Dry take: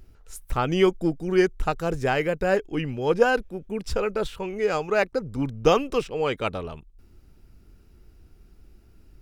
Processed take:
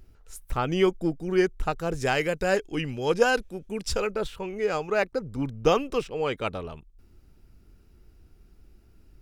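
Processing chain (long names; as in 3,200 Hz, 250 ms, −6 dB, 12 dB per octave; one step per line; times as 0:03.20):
0:01.95–0:04.07: parametric band 7,300 Hz +9.5 dB 2.5 octaves
level −2.5 dB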